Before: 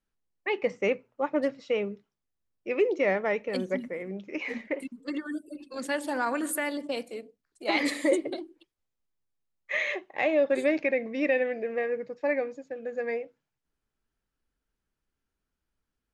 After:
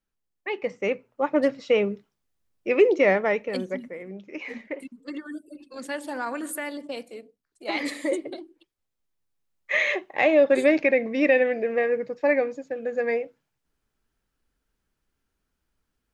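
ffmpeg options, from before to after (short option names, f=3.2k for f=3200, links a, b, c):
-af "volume=15dB,afade=t=in:st=0.77:d=0.88:silence=0.398107,afade=t=out:st=2.92:d=0.88:silence=0.354813,afade=t=in:st=8.42:d=1.4:silence=0.398107"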